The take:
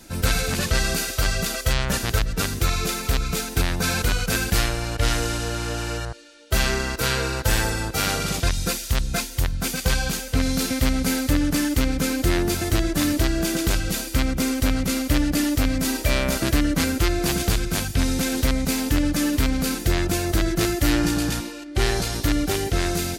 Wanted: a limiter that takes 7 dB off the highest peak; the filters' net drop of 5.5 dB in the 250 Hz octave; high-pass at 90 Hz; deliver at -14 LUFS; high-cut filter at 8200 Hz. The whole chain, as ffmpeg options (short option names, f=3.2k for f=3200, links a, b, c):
-af "highpass=90,lowpass=8.2k,equalizer=f=250:t=o:g=-7,volume=13dB,alimiter=limit=-1.5dB:level=0:latency=1"